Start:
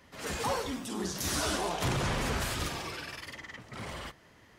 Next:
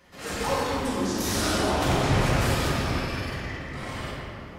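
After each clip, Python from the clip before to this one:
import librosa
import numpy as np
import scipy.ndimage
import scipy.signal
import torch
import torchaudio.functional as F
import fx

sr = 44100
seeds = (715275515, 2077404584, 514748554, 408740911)

y = fx.room_shoebox(x, sr, seeds[0], volume_m3=160.0, walls='hard', distance_m=0.91)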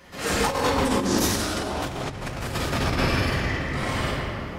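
y = fx.over_compress(x, sr, threshold_db=-28.0, ratio=-0.5)
y = F.gain(torch.from_numpy(y), 4.5).numpy()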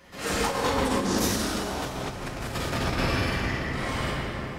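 y = fx.rev_plate(x, sr, seeds[1], rt60_s=3.5, hf_ratio=0.8, predelay_ms=0, drr_db=6.0)
y = F.gain(torch.from_numpy(y), -3.5).numpy()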